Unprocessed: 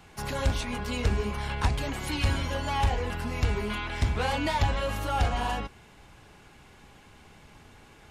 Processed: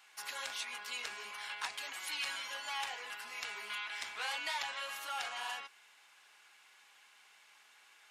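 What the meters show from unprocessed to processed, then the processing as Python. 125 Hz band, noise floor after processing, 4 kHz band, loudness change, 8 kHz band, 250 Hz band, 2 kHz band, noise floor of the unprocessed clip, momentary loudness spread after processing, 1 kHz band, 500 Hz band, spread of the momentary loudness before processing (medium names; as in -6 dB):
under -40 dB, -64 dBFS, -3.5 dB, -10.5 dB, -3.5 dB, -33.0 dB, -5.0 dB, -54 dBFS, 6 LU, -11.5 dB, -20.5 dB, 5 LU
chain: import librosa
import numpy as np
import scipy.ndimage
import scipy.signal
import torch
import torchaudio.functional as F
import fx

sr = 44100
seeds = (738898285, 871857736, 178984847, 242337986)

y = scipy.signal.sosfilt(scipy.signal.butter(2, 1400.0, 'highpass', fs=sr, output='sos'), x)
y = y * librosa.db_to_amplitude(-3.5)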